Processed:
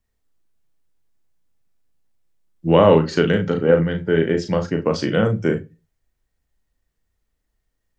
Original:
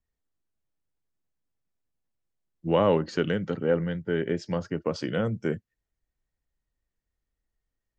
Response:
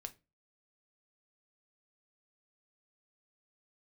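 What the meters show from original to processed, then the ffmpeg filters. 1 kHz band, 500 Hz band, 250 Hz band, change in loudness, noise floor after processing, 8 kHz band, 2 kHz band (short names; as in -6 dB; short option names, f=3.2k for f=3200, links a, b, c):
+8.5 dB, +9.5 dB, +9.0 dB, +9.0 dB, -75 dBFS, n/a, +9.0 dB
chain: -filter_complex "[0:a]asplit=2[a][b];[1:a]atrim=start_sample=2205,adelay=37[c];[b][c]afir=irnorm=-1:irlink=0,volume=-1.5dB[d];[a][d]amix=inputs=2:normalize=0,volume=8dB"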